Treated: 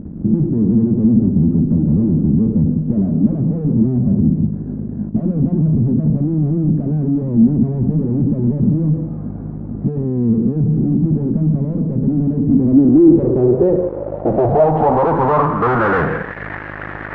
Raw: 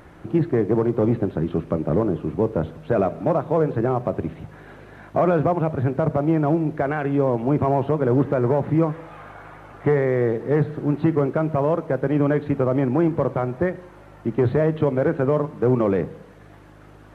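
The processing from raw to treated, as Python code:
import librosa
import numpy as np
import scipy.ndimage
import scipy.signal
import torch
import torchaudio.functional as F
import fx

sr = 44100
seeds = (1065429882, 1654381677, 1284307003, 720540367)

y = fx.fuzz(x, sr, gain_db=38.0, gate_db=-47.0)
y = fx.filter_sweep_lowpass(y, sr, from_hz=220.0, to_hz=1800.0, start_s=12.36, end_s=16.35, q=4.6)
y = y * 10.0 ** (-3.0 / 20.0)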